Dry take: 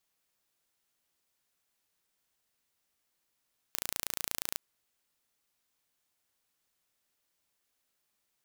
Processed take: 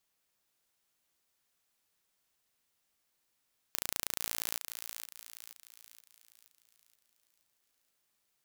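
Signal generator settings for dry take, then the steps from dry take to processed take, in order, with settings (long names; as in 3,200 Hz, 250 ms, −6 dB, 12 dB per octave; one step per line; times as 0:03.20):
impulse train 28.4 per second, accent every 0, −6 dBFS 0.81 s
feedback echo with a high-pass in the loop 475 ms, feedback 47%, high-pass 940 Hz, level −7 dB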